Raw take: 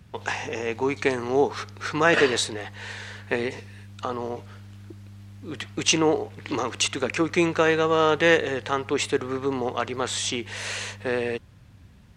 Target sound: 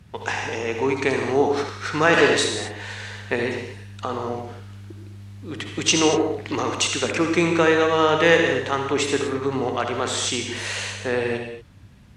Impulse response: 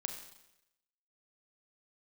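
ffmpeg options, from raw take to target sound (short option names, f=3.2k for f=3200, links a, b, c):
-filter_complex "[1:a]atrim=start_sample=2205,atrim=end_sample=6174,asetrate=25137,aresample=44100[a];[0:a][a]afir=irnorm=-1:irlink=0"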